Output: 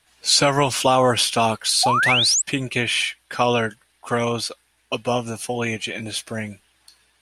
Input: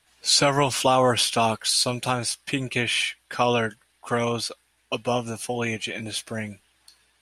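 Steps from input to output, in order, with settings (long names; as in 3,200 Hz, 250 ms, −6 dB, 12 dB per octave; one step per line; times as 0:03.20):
sound drawn into the spectrogram rise, 0:01.83–0:02.42, 700–8,200 Hz −21 dBFS
level +2.5 dB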